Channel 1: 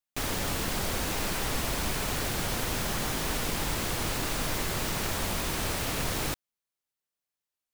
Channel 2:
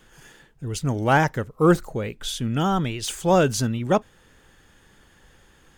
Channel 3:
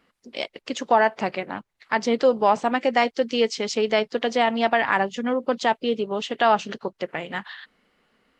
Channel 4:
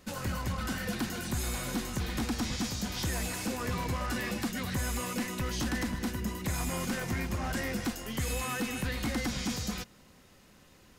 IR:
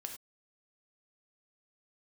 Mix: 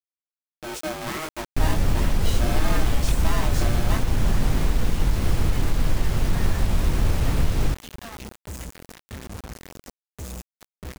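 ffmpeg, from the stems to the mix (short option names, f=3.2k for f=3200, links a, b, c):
-filter_complex "[0:a]adelay=1400,volume=1dB[a];[1:a]aeval=exprs='val(0)*sgn(sin(2*PI*470*n/s))':c=same,volume=-2dB[b];[2:a]bandpass=f=2.4k:t=q:w=0.76:csg=0,asoftclip=type=tanh:threshold=-20dB,adelay=1600,volume=-13.5dB[c];[3:a]aexciter=amount=8.5:drive=2:freq=5k,adelay=2000,volume=-18dB[d];[b][c]amix=inputs=2:normalize=0,flanger=delay=19.5:depth=4.6:speed=1.5,alimiter=limit=-21dB:level=0:latency=1:release=270,volume=0dB[e];[a][d]amix=inputs=2:normalize=0,aemphasis=mode=reproduction:type=riaa,alimiter=limit=-10.5dB:level=0:latency=1:release=184,volume=0dB[f];[e][f]amix=inputs=2:normalize=0,acrusher=bits=5:mix=0:aa=0.000001"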